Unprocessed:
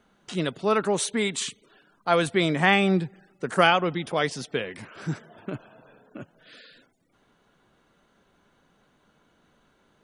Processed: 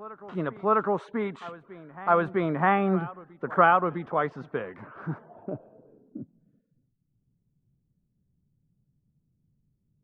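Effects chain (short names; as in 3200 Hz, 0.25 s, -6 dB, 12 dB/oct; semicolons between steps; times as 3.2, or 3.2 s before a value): low-pass sweep 1200 Hz -> 130 Hz, 5.06–6.75; reverse echo 0.656 s -19 dB; gain -3.5 dB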